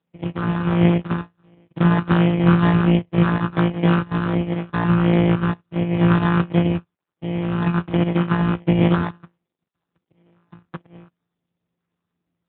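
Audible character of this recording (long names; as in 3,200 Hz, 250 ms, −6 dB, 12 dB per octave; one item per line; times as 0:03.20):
a buzz of ramps at a fixed pitch in blocks of 256 samples
phaser sweep stages 8, 1.4 Hz, lowest notch 500–1,300 Hz
aliases and images of a low sample rate 2,700 Hz, jitter 0%
AMR narrowband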